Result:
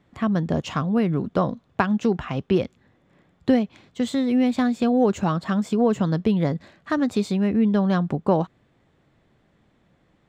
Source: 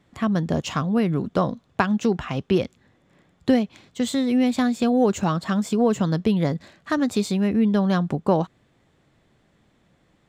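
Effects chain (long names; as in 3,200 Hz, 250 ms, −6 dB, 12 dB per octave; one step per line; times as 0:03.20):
high-shelf EQ 4,800 Hz −9.5 dB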